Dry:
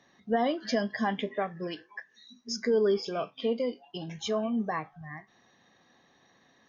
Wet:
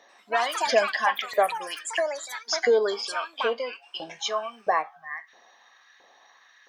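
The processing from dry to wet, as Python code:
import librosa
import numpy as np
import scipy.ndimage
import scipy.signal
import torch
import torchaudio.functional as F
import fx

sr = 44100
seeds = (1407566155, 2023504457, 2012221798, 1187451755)

y = fx.filter_lfo_highpass(x, sr, shape='saw_up', hz=1.5, low_hz=520.0, high_hz=1800.0, q=1.6)
y = fx.echo_pitch(y, sr, ms=92, semitones=6, count=3, db_per_echo=-6.0)
y = y * 10.0 ** (6.5 / 20.0)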